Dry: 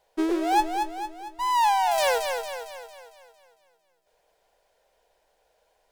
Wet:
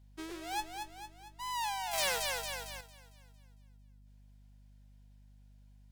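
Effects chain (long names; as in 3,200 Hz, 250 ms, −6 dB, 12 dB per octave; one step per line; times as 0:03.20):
mains hum 50 Hz, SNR 16 dB
0:01.93–0:02.81: leveller curve on the samples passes 2
guitar amp tone stack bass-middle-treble 5-5-5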